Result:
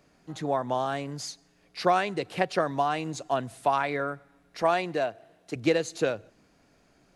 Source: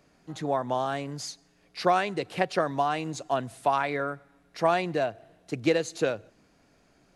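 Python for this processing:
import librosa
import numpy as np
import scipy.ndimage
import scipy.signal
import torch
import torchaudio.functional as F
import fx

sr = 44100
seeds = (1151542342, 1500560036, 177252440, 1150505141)

y = fx.low_shelf(x, sr, hz=130.0, db=-12.0, at=(4.62, 5.56))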